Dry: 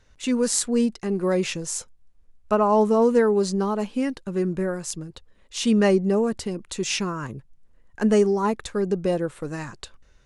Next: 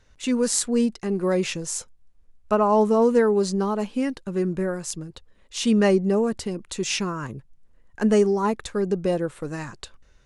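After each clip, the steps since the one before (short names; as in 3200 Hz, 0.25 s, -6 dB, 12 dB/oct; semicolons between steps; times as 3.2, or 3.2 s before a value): nothing audible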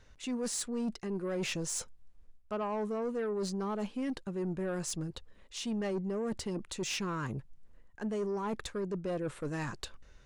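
high shelf 7500 Hz -4.5 dB; reverse; compressor 6:1, threshold -30 dBFS, peak gain reduction 15.5 dB; reverse; soft clip -28.5 dBFS, distortion -16 dB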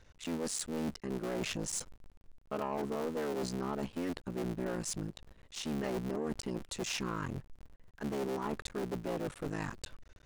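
cycle switcher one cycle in 3, muted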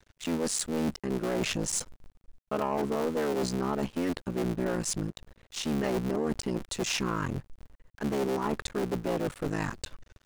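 crossover distortion -57.5 dBFS; gain +7 dB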